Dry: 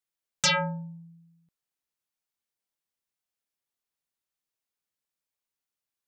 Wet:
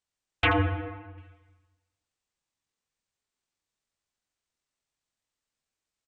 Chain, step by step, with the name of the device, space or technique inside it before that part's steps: monster voice (pitch shift -10.5 st; formant shift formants -4.5 st; low shelf 150 Hz +8 dB; echo 81 ms -12 dB; reverb RT60 1.2 s, pre-delay 88 ms, DRR 5.5 dB); 0.53–1.18 Bessel low-pass 1600 Hz, order 2

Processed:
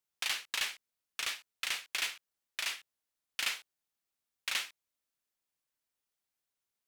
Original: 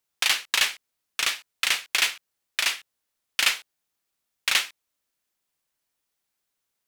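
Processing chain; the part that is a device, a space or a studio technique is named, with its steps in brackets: clipper into limiter (hard clip -11 dBFS, distortion -23 dB; limiter -14.5 dBFS, peak gain reduction 3.5 dB); gain -8.5 dB

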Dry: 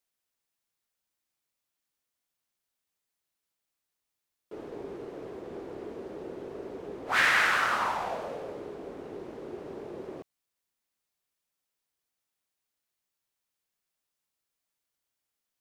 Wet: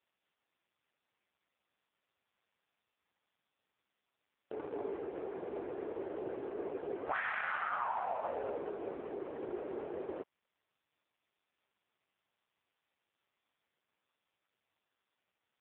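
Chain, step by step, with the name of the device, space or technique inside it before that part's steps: 4.53–5 comb 7 ms, depth 33%; dynamic EQ 820 Hz, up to +7 dB, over -44 dBFS, Q 1.4; voicemail (BPF 340–2700 Hz; compressor 10:1, threshold -33 dBFS, peak gain reduction 14.5 dB; gain +3.5 dB; AMR-NB 4.75 kbps 8000 Hz)

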